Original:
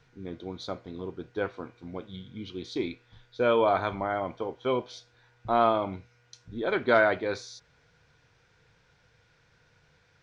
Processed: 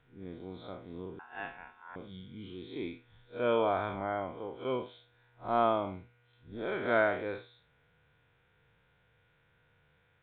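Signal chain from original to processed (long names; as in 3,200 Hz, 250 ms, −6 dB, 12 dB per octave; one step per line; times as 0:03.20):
spectrum smeared in time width 110 ms
0:01.19–0:01.96: ring modulation 1,200 Hz
downsampling to 8,000 Hz
level −3.5 dB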